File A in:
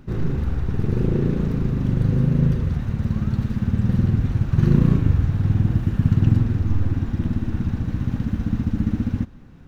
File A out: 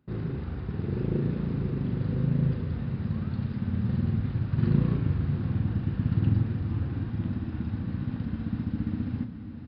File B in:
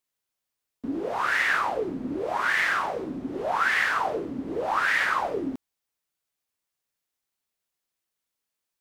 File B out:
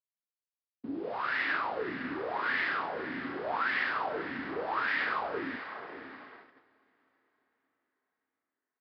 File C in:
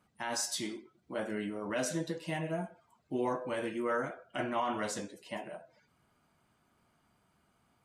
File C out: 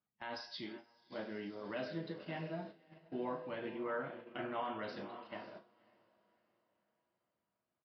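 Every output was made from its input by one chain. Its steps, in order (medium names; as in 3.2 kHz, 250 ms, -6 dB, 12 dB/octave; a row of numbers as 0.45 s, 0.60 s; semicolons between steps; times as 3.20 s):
high-pass 77 Hz 12 dB/octave; echo that smears into a reverb 565 ms, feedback 42%, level -10 dB; gate -42 dBFS, range -14 dB; doubling 36 ms -10.5 dB; resampled via 11.025 kHz; trim -7.5 dB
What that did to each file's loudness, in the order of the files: -7.5 LU, -7.0 LU, -7.5 LU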